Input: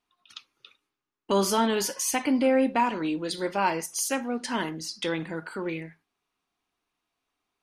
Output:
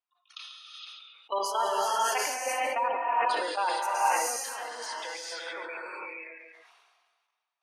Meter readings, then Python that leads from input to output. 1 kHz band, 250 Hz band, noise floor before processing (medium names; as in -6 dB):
+2.5 dB, -23.0 dB, -84 dBFS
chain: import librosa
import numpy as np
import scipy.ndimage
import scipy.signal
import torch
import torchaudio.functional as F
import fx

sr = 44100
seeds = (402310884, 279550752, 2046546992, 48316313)

y = fx.spec_gate(x, sr, threshold_db=-20, keep='strong')
y = scipy.signal.sosfilt(scipy.signal.butter(4, 620.0, 'highpass', fs=sr, output='sos'), y)
y = fx.high_shelf(y, sr, hz=3500.0, db=-4.0)
y = fx.level_steps(y, sr, step_db=14)
y = fx.echo_feedback(y, sr, ms=140, feedback_pct=20, wet_db=-14.0)
y = fx.rev_gated(y, sr, seeds[0], gate_ms=490, shape='rising', drr_db=-4.5)
y = fx.sustainer(y, sr, db_per_s=35.0)